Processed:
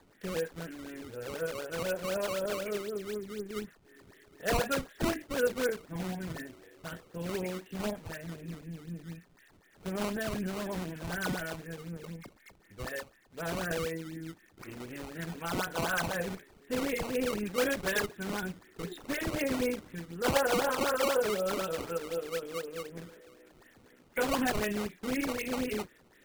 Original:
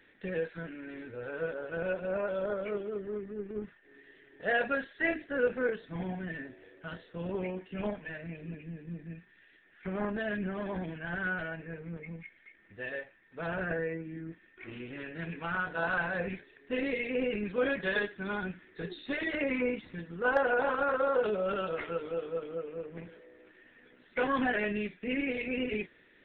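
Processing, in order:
sample-and-hold swept by an LFO 15×, swing 160% 4 Hz

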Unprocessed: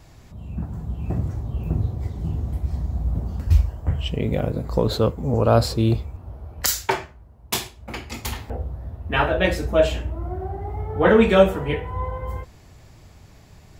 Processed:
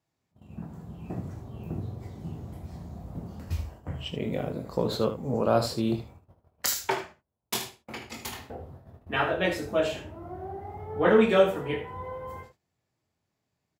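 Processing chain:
high-pass filter 140 Hz 12 dB per octave
noise gate −41 dBFS, range −23 dB
ambience of single reflections 23 ms −7.5 dB, 76 ms −10 dB
level −6.5 dB

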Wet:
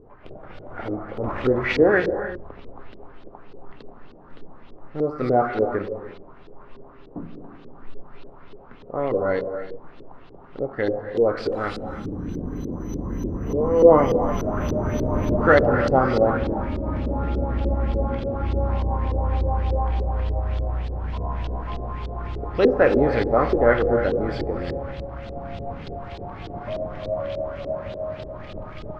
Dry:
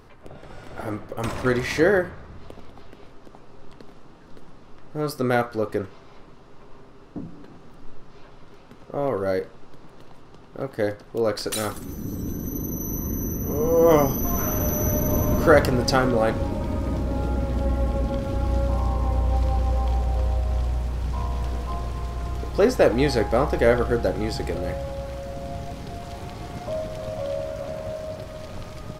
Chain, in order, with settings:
reverb whose tail is shaped and stops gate 380 ms flat, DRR 6 dB
auto-filter low-pass saw up 3.4 Hz 370–4,100 Hz
level −1.5 dB

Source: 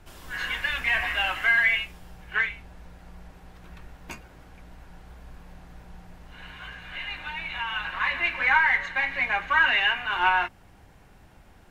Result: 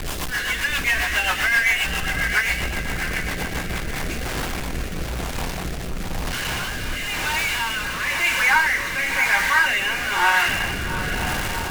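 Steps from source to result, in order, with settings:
converter with a step at zero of −22 dBFS
feedback delay with all-pass diffusion 743 ms, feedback 45%, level −5 dB
rotating-speaker cabinet horn 7.5 Hz, later 1 Hz, at 0:03.40
level +2 dB

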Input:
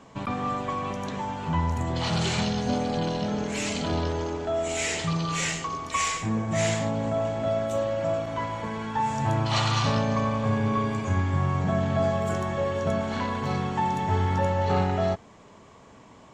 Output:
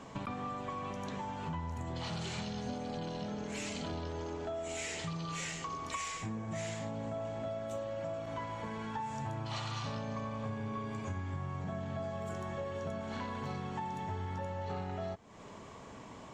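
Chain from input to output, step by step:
downward compressor 5 to 1, threshold −39 dBFS, peak gain reduction 17.5 dB
level +1 dB

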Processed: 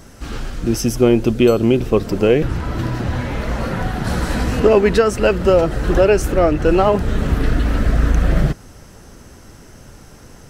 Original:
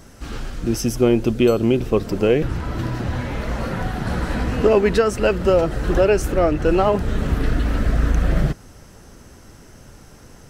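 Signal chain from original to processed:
0:04.04–0:04.60: bass and treble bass 0 dB, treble +7 dB
level +3 dB

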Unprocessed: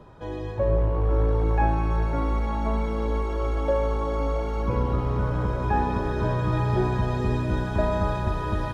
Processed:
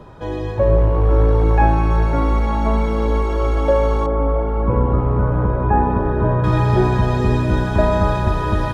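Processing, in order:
0:04.06–0:06.44: low-pass filter 1,400 Hz 12 dB per octave
level +8 dB

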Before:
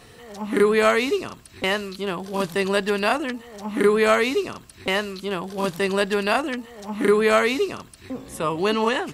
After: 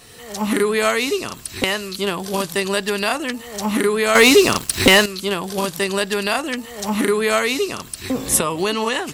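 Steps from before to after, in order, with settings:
camcorder AGC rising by 22 dB per second
high-shelf EQ 3,600 Hz +11.5 dB
0:04.15–0:05.06: leveller curve on the samples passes 3
level −1.5 dB

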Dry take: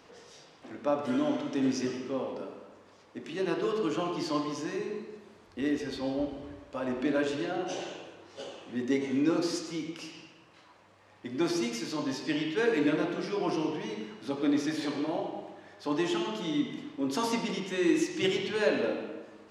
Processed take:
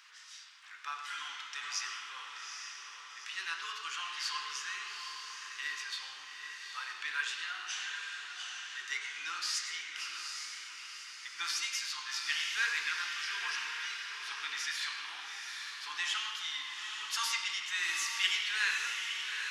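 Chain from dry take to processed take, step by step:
inverse Chebyshev high-pass filter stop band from 650 Hz, stop band 40 dB
on a send: feedback delay with all-pass diffusion 839 ms, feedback 51%, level −5.5 dB
on the sum: level +4 dB

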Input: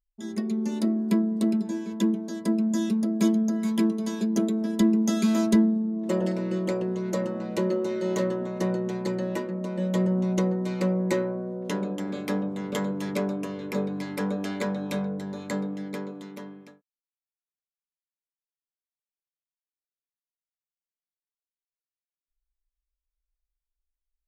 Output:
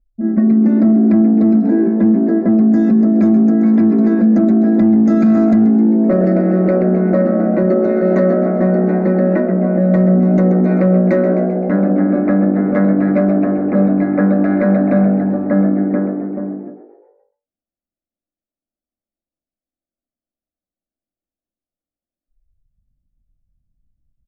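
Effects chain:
low-pass that shuts in the quiet parts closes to 490 Hz, open at −19.5 dBFS
phaser with its sweep stopped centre 630 Hz, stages 8
in parallel at −3.5 dB: hard clipping −22 dBFS, distortion −14 dB
on the sum: head-to-tape spacing loss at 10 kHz 40 dB
on a send: echo with shifted repeats 130 ms, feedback 52%, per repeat +56 Hz, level −12.5 dB
on the sum: boost into a limiter +21.5 dB
every ending faded ahead of time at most 150 dB per second
level −4.5 dB

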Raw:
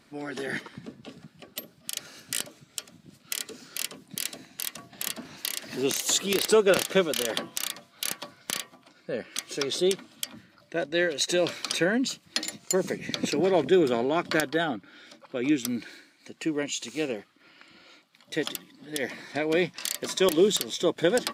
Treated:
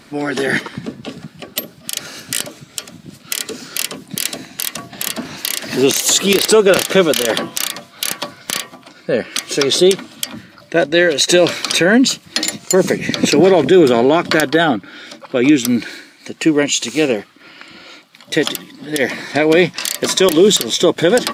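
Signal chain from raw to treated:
boost into a limiter +16.5 dB
level −1 dB

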